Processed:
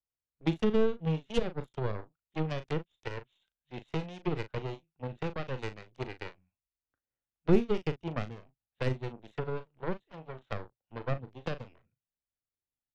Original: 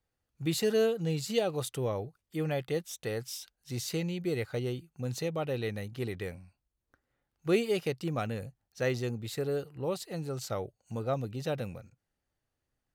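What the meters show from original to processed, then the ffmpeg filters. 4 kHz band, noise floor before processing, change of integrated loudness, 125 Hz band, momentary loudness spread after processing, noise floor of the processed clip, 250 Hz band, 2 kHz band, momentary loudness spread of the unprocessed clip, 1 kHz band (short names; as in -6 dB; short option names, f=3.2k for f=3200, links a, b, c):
-6.0 dB, -85 dBFS, -1.5 dB, -0.5 dB, 15 LU, under -85 dBFS, +0.5 dB, -2.0 dB, 11 LU, 0.0 dB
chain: -filter_complex "[0:a]aresample=8000,aresample=44100,aeval=exprs='0.168*(cos(1*acos(clip(val(0)/0.168,-1,1)))-cos(1*PI/2))+0.0668*(cos(2*acos(clip(val(0)/0.168,-1,1)))-cos(2*PI/2))+0.00335*(cos(3*acos(clip(val(0)/0.168,-1,1)))-cos(3*PI/2))+0.0237*(cos(7*acos(clip(val(0)/0.168,-1,1)))-cos(7*PI/2))+0.00133*(cos(8*acos(clip(val(0)/0.168,-1,1)))-cos(8*PI/2))':c=same,asplit=2[a][b];[b]adelay=38,volume=-12dB[c];[a][c]amix=inputs=2:normalize=0,acrossover=split=340[d][e];[e]acompressor=threshold=-44dB:ratio=6[f];[d][f]amix=inputs=2:normalize=0,volume=7.5dB"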